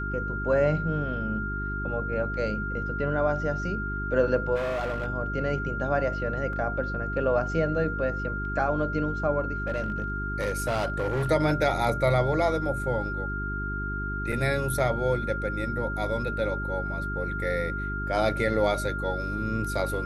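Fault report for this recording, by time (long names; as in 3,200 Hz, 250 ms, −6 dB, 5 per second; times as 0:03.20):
mains hum 50 Hz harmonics 8 −33 dBFS
whistle 1,400 Hz −32 dBFS
0:04.55–0:05.06: clipping −26 dBFS
0:06.53: drop-out 2.1 ms
0:09.66–0:11.30: clipping −23 dBFS
0:14.32: drop-out 4.4 ms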